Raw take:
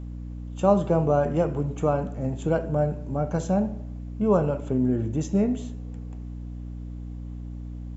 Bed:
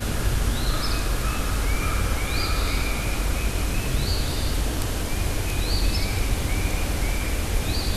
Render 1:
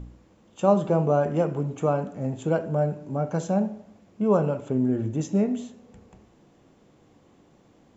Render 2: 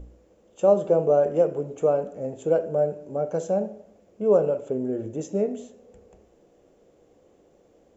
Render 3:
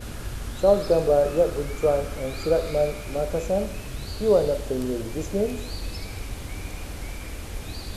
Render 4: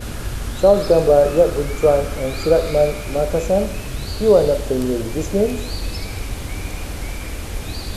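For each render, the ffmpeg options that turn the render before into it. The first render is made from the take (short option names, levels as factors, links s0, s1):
-af "bandreject=f=60:t=h:w=4,bandreject=f=120:t=h:w=4,bandreject=f=180:t=h:w=4,bandreject=f=240:t=h:w=4,bandreject=f=300:t=h:w=4"
-af "equalizer=f=125:t=o:w=1:g=-10,equalizer=f=250:t=o:w=1:g=-6,equalizer=f=500:t=o:w=1:g=9,equalizer=f=1000:t=o:w=1:g=-8,equalizer=f=2000:t=o:w=1:g=-4,equalizer=f=4000:t=o:w=1:g=-6"
-filter_complex "[1:a]volume=0.316[s0];[0:a][s0]amix=inputs=2:normalize=0"
-af "volume=2.24,alimiter=limit=0.708:level=0:latency=1"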